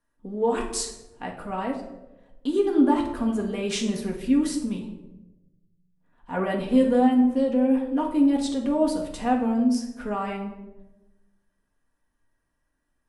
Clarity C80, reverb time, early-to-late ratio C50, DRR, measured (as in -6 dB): 10.0 dB, 1.0 s, 7.0 dB, -0.5 dB